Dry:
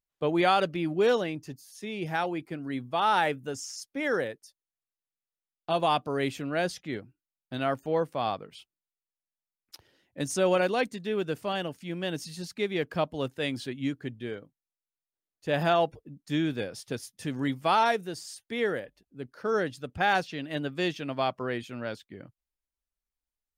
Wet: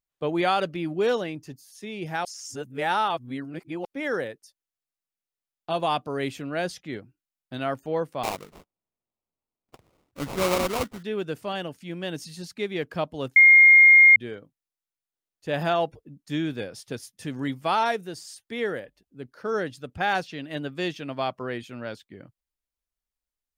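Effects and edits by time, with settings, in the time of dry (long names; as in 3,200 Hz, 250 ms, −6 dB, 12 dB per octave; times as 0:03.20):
0:02.25–0:03.85: reverse
0:08.23–0:11.03: sample-rate reduction 1,700 Hz, jitter 20%
0:13.36–0:14.16: beep over 2,130 Hz −9.5 dBFS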